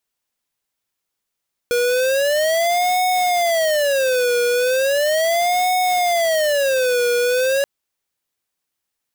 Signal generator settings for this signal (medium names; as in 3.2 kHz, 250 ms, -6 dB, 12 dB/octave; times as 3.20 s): siren wail 482–735 Hz 0.37 per s square -17.5 dBFS 5.93 s